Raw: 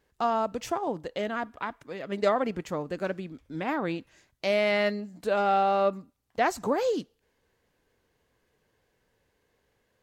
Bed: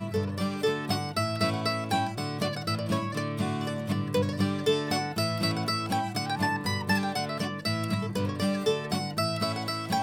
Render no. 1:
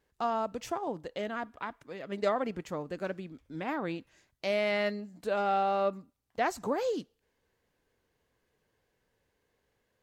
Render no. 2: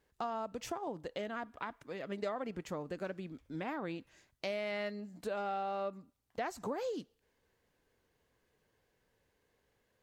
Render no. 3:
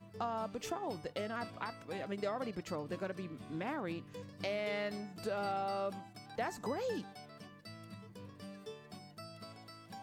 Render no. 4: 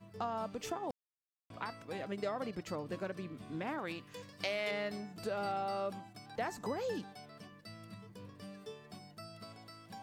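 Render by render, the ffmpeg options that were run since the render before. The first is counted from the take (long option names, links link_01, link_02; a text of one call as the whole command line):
ffmpeg -i in.wav -af "volume=-4.5dB" out.wav
ffmpeg -i in.wav -af "acompressor=threshold=-37dB:ratio=3" out.wav
ffmpeg -i in.wav -i bed.wav -filter_complex "[1:a]volume=-22dB[link_01];[0:a][link_01]amix=inputs=2:normalize=0" out.wav
ffmpeg -i in.wav -filter_complex "[0:a]asettb=1/sr,asplit=3[link_01][link_02][link_03];[link_01]atrim=end=3.784[link_04];[link_02]atrim=start=3.78:end=4.71,asetpts=PTS-STARTPTS,afade=type=in:duration=0.004:curve=qsin,afade=type=out:start_time=0.926:duration=0.004:curve=qsin,tiltshelf=frequency=640:gain=-5.5[link_05];[link_03]atrim=start=4.706[link_06];[link_04][link_05]acrossfade=duration=0.004:curve1=hsin:curve2=qsin[link_07];[link_07][link_06]acrossfade=duration=0.004:curve1=qsin:curve2=hsin,asplit=3[link_08][link_09][link_10];[link_08]atrim=end=0.91,asetpts=PTS-STARTPTS,afade=type=out:start_time=0.906:duration=0.004:curve=hsin[link_11];[link_09]atrim=start=0.91:end=1.5,asetpts=PTS-STARTPTS,volume=0[link_12];[link_10]atrim=start=1.5,asetpts=PTS-STARTPTS,afade=type=in:duration=0.004:curve=hsin[link_13];[link_11][link_12][link_13]concat=n=3:v=0:a=1" out.wav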